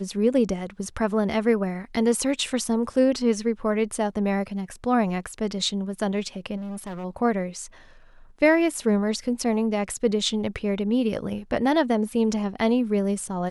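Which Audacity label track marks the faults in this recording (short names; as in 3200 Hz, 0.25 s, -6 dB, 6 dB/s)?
6.560000	7.050000	clipped -31 dBFS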